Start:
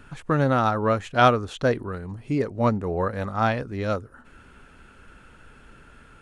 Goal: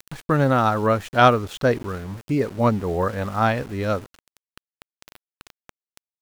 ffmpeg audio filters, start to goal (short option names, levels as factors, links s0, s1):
-af "aeval=exprs='val(0)*gte(abs(val(0)),0.0112)':c=same,acompressor=mode=upward:threshold=0.0141:ratio=2.5,volume=1.33"